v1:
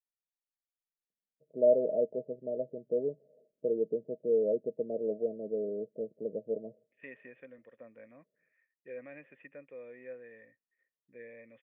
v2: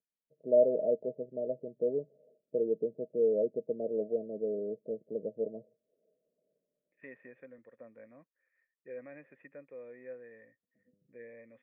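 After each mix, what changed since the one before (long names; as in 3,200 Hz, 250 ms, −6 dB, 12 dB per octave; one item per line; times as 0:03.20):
first voice: entry −1.10 s
second voice: add parametric band 3,000 Hz −14 dB 0.54 octaves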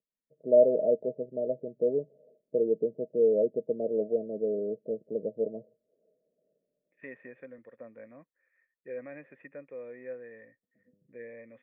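first voice +4.0 dB
second voice +5.0 dB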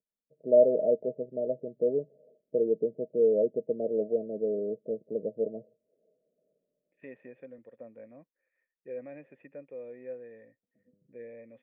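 master: add flat-topped bell 1,500 Hz −8.5 dB 1.3 octaves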